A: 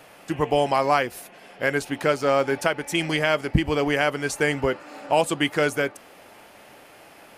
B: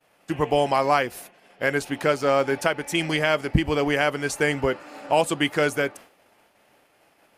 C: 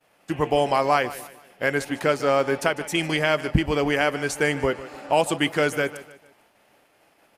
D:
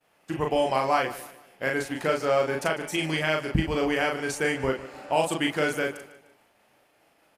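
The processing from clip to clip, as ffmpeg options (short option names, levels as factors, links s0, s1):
-af "agate=range=0.0224:threshold=0.0112:ratio=3:detection=peak"
-af "aecho=1:1:150|300|450:0.158|0.0602|0.0229"
-filter_complex "[0:a]asplit=2[s0][s1];[s1]adelay=38,volume=0.708[s2];[s0][s2]amix=inputs=2:normalize=0,volume=0.562"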